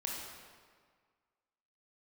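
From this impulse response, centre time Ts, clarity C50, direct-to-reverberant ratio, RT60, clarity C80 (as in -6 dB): 91 ms, -0.5 dB, -2.5 dB, 1.8 s, 2.0 dB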